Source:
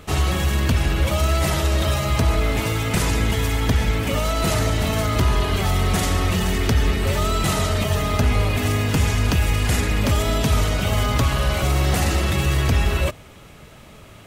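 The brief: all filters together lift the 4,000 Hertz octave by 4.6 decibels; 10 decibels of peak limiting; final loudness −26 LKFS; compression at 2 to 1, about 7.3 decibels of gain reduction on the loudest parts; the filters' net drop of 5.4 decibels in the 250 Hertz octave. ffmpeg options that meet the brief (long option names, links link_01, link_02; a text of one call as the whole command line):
ffmpeg -i in.wav -af "equalizer=frequency=250:width_type=o:gain=-8,equalizer=frequency=4000:width_type=o:gain=6,acompressor=threshold=-28dB:ratio=2,volume=4.5dB,alimiter=limit=-17dB:level=0:latency=1" out.wav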